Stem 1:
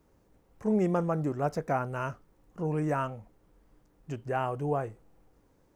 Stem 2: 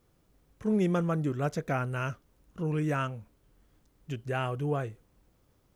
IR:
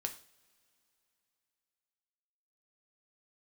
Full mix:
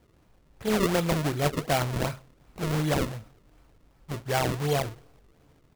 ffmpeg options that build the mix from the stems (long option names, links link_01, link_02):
-filter_complex "[0:a]aecho=1:1:1:0.73,volume=-4dB[link_01];[1:a]acrusher=samples=12:mix=1:aa=0.000001,volume=-1,volume=1.5dB,asplit=2[link_02][link_03];[link_03]volume=-4dB[link_04];[2:a]atrim=start_sample=2205[link_05];[link_04][link_05]afir=irnorm=-1:irlink=0[link_06];[link_01][link_02][link_06]amix=inputs=3:normalize=0,acrusher=samples=32:mix=1:aa=0.000001:lfo=1:lforange=51.2:lforate=2.7"